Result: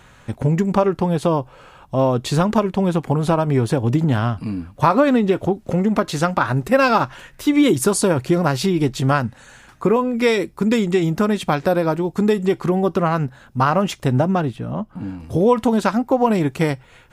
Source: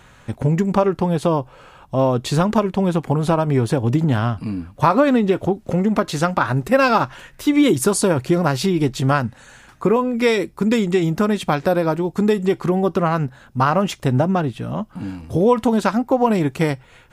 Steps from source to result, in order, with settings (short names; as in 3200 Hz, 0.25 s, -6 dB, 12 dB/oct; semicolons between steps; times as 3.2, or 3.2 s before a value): 14.56–15.2 high shelf 2200 Hz -9.5 dB